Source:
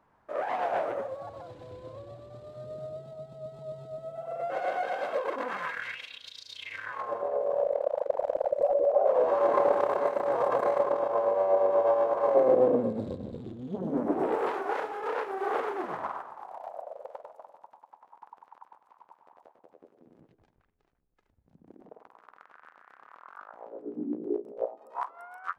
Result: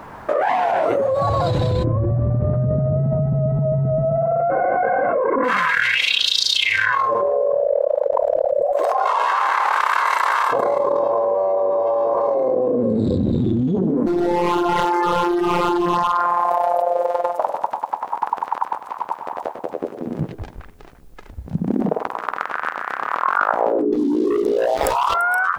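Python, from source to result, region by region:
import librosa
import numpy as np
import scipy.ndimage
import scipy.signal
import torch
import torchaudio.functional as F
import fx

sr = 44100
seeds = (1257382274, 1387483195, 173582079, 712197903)

y = fx.chain(x, sr, fx.lowpass(hz=1900.0, slope=24),
    fx.low_shelf(hz=300.0, db=10.0), at=(1.84, 5.44))
y = fx.spec_clip(y, sr, under_db=14, at=(8.72, 10.51), fade=0.02)
y = fx.highpass(y, sr, hz=1200.0, slope=12, at=(8.72, 10.51), fade=0.02)
y = fx.chain(y, sr, fx.robotise(hz=174.0),
    fx.overload_stage(gain_db=29.5), at=(14.06, 17.39))
y = fx.chain(y, sr, fx.highpass(hz=260.0, slope=24),
    fx.leveller(passes=3), at=(23.92, 25.14))
y = fx.noise_reduce_blind(y, sr, reduce_db=10)
y = fx.env_flatten(y, sr, amount_pct=100)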